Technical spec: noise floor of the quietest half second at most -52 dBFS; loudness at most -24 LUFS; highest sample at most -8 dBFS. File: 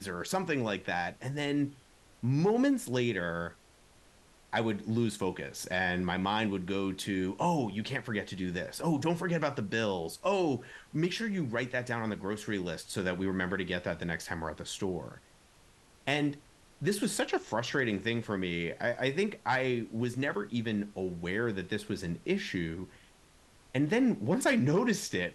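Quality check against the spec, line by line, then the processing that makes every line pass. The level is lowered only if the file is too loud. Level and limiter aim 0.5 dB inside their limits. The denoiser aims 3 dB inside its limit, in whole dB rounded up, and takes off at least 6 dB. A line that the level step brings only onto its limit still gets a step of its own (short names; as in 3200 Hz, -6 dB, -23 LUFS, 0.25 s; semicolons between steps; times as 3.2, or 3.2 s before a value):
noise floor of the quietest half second -61 dBFS: OK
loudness -32.5 LUFS: OK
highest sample -15.0 dBFS: OK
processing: none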